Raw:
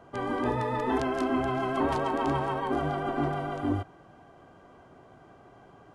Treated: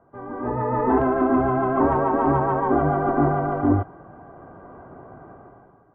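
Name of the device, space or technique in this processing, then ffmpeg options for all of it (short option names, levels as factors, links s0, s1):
action camera in a waterproof case: -af "lowpass=f=1500:w=0.5412,lowpass=f=1500:w=1.3066,dynaudnorm=f=130:g=9:m=6.31,volume=0.562" -ar 24000 -c:a aac -b:a 48k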